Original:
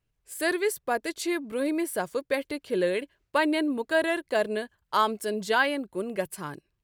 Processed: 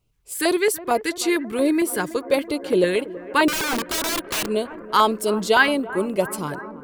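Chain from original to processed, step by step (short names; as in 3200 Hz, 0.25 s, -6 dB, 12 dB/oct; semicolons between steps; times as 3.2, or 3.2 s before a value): LFO notch square 4.4 Hz 620–1700 Hz; 3.48–4.49 wrapped overs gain 28 dB; analogue delay 0.33 s, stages 4096, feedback 81%, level -17 dB; gain +8.5 dB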